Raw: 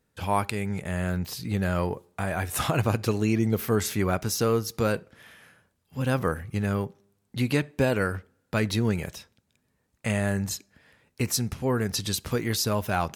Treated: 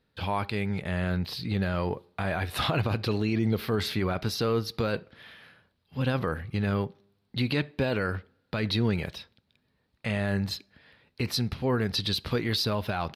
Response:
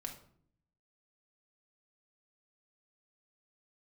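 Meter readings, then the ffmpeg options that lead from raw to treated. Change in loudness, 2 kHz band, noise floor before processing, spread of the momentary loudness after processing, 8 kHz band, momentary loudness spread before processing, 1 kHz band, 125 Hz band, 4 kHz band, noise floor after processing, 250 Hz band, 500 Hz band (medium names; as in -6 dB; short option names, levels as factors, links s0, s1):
-2.0 dB, -1.5 dB, -74 dBFS, 9 LU, -12.0 dB, 8 LU, -3.0 dB, -1.5 dB, +2.5 dB, -74 dBFS, -2.0 dB, -2.5 dB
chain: -af "highshelf=f=5400:t=q:w=3:g=-9,alimiter=limit=0.133:level=0:latency=1:release=22,aresample=32000,aresample=44100"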